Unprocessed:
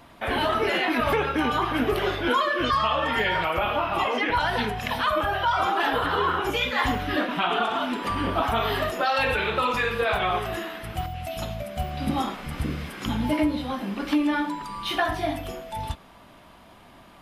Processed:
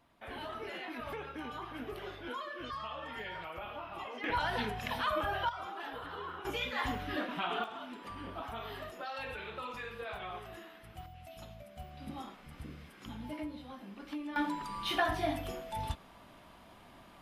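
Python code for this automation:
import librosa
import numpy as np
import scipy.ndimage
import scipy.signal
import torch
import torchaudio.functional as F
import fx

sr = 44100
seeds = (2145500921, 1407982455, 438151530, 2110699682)

y = fx.gain(x, sr, db=fx.steps((0.0, -18.5), (4.24, -9.0), (5.49, -19.0), (6.45, -11.0), (7.64, -18.0), (14.36, -6.0)))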